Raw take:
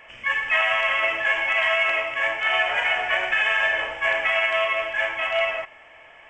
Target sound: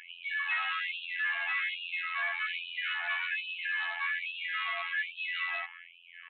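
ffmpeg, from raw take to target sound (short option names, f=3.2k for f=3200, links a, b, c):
-filter_complex "[0:a]acrossover=split=910|2200[a][b][c];[a]acompressor=threshold=-40dB:ratio=4[d];[b]acompressor=threshold=-29dB:ratio=4[e];[c]acompressor=threshold=-31dB:ratio=4[f];[d][e][f]amix=inputs=3:normalize=0,afftfilt=real='hypot(re,im)*cos(PI*b)':imag='0':win_size=2048:overlap=0.75,aresample=8000,asoftclip=type=tanh:threshold=-30dB,aresample=44100,afftfilt=real='re*gte(b*sr/1024,630*pow(2500/630,0.5+0.5*sin(2*PI*1.2*pts/sr)))':imag='im*gte(b*sr/1024,630*pow(2500/630,0.5+0.5*sin(2*PI*1.2*pts/sr)))':win_size=1024:overlap=0.75,volume=3.5dB"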